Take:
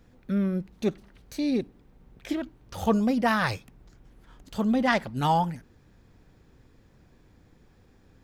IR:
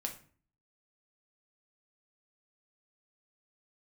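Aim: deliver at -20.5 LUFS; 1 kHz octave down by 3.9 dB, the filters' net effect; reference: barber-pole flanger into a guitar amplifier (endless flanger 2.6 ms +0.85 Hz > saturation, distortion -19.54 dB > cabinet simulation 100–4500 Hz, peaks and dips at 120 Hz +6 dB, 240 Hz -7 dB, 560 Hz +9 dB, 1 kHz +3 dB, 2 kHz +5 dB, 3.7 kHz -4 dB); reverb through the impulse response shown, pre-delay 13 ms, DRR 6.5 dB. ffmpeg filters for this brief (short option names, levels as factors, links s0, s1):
-filter_complex "[0:a]equalizer=f=1000:t=o:g=-8,asplit=2[s0][s1];[1:a]atrim=start_sample=2205,adelay=13[s2];[s1][s2]afir=irnorm=-1:irlink=0,volume=0.473[s3];[s0][s3]amix=inputs=2:normalize=0,asplit=2[s4][s5];[s5]adelay=2.6,afreqshift=0.85[s6];[s4][s6]amix=inputs=2:normalize=1,asoftclip=threshold=0.141,highpass=100,equalizer=f=120:t=q:w=4:g=6,equalizer=f=240:t=q:w=4:g=-7,equalizer=f=560:t=q:w=4:g=9,equalizer=f=1000:t=q:w=4:g=3,equalizer=f=2000:t=q:w=4:g=5,equalizer=f=3700:t=q:w=4:g=-4,lowpass=f=4500:w=0.5412,lowpass=f=4500:w=1.3066,volume=3.98"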